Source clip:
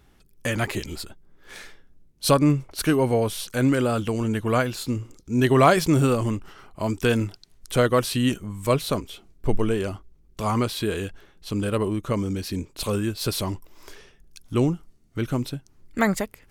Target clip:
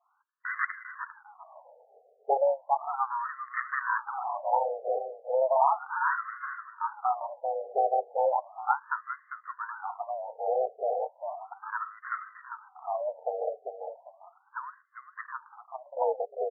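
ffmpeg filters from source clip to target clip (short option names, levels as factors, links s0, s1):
-filter_complex "[0:a]adynamicequalizer=threshold=0.0158:dfrequency=1100:dqfactor=1.6:tfrequency=1100:tqfactor=1.6:attack=5:release=100:ratio=0.375:range=2.5:mode=boostabove:tftype=bell,aeval=exprs='val(0)*sin(2*PI*270*n/s)':c=same,asplit=2[s0][s1];[s1]adelay=398,lowpass=f=1100:p=1,volume=0.596,asplit=2[s2][s3];[s3]adelay=398,lowpass=f=1100:p=1,volume=0.34,asplit=2[s4][s5];[s5]adelay=398,lowpass=f=1100:p=1,volume=0.34,asplit=2[s6][s7];[s7]adelay=398,lowpass=f=1100:p=1,volume=0.34[s8];[s2][s4][s6][s8]amix=inputs=4:normalize=0[s9];[s0][s9]amix=inputs=2:normalize=0,alimiter=level_in=2.99:limit=0.891:release=50:level=0:latency=1,afftfilt=real='re*between(b*sr/1024,570*pow(1500/570,0.5+0.5*sin(2*PI*0.35*pts/sr))/1.41,570*pow(1500/570,0.5+0.5*sin(2*PI*0.35*pts/sr))*1.41)':imag='im*between(b*sr/1024,570*pow(1500/570,0.5+0.5*sin(2*PI*0.35*pts/sr))/1.41,570*pow(1500/570,0.5+0.5*sin(2*PI*0.35*pts/sr))*1.41)':win_size=1024:overlap=0.75,volume=0.447"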